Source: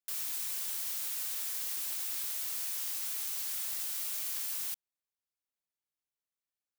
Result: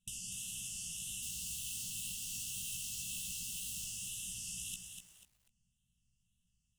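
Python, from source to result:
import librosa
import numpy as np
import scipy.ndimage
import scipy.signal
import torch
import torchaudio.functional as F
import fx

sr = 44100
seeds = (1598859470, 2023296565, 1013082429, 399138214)

y = scipy.signal.sosfilt(scipy.signal.butter(4, 9100.0, 'lowpass', fs=sr, output='sos'), x)
y = fx.tilt_eq(y, sr, slope=-2.5)
y = fx.over_compress(y, sr, threshold_db=-54.0, ratio=-0.5)
y = fx.fixed_phaser(y, sr, hz=1800.0, stages=4)
y = fx.quant_dither(y, sr, seeds[0], bits=10, dither='none', at=(1.23, 3.85))
y = fx.wow_flutter(y, sr, seeds[1], rate_hz=2.1, depth_cents=150.0)
y = fx.brickwall_bandstop(y, sr, low_hz=230.0, high_hz=2600.0)
y = fx.doubler(y, sr, ms=17.0, db=-4.5)
y = fx.echo_feedback(y, sr, ms=66, feedback_pct=54, wet_db=-18.0)
y = fx.echo_crushed(y, sr, ms=245, feedback_pct=35, bits=13, wet_db=-6)
y = y * librosa.db_to_amplitude(16.5)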